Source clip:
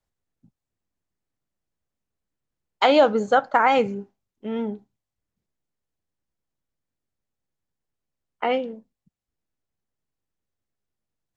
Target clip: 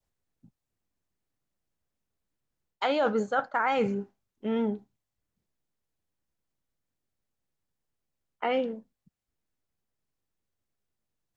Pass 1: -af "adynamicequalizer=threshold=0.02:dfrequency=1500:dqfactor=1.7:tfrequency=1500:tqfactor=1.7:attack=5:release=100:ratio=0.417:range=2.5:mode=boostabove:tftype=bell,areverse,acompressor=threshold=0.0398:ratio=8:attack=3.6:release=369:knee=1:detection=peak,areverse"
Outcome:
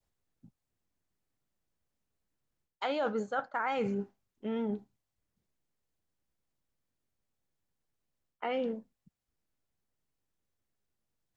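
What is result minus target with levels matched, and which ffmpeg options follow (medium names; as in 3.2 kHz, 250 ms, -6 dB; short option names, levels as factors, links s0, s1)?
compression: peak gain reduction +6 dB
-af "adynamicequalizer=threshold=0.02:dfrequency=1500:dqfactor=1.7:tfrequency=1500:tqfactor=1.7:attack=5:release=100:ratio=0.417:range=2.5:mode=boostabove:tftype=bell,areverse,acompressor=threshold=0.0891:ratio=8:attack=3.6:release=369:knee=1:detection=peak,areverse"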